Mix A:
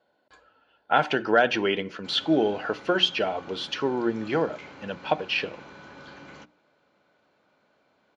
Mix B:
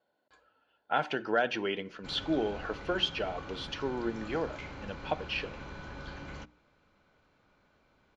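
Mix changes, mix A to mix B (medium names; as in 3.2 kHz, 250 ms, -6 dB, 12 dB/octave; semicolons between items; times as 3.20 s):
speech -8.0 dB; background: remove high-pass 180 Hz 12 dB/octave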